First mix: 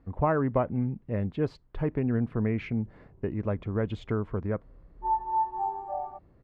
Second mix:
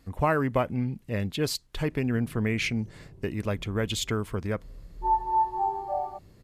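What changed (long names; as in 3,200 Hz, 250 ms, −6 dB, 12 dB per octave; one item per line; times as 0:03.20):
background: add tilt shelving filter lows +8.5 dB, about 1,100 Hz
master: remove low-pass filter 1,200 Hz 12 dB per octave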